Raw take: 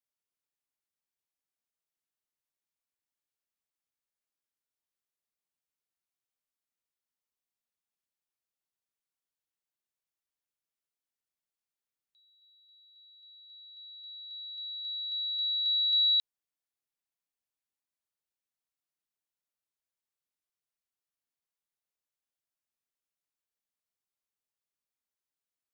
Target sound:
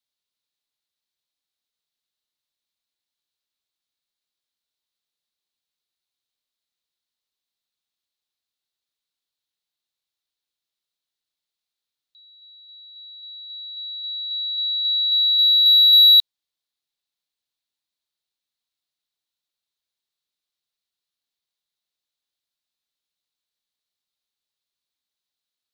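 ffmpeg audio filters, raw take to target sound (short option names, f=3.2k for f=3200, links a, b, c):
-af "equalizer=f=3.9k:t=o:w=0.71:g=14.5,acontrast=61,volume=-5dB"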